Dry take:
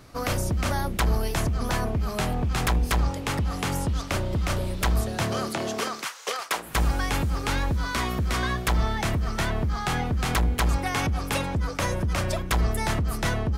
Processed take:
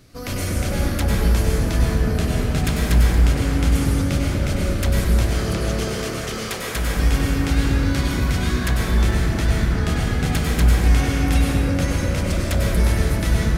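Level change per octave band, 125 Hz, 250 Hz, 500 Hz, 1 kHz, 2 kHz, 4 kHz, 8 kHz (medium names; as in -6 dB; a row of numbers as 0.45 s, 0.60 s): +7.5 dB, +7.5 dB, +4.5 dB, -2.0 dB, +2.5 dB, +3.0 dB, +3.5 dB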